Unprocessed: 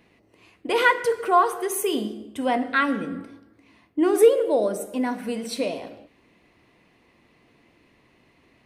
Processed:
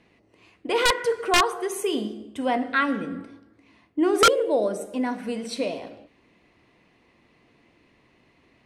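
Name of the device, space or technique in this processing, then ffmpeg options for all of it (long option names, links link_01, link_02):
overflowing digital effects unit: -af "aeval=exprs='(mod(2.82*val(0)+1,2)-1)/2.82':channel_layout=same,lowpass=8700,volume=-1dB"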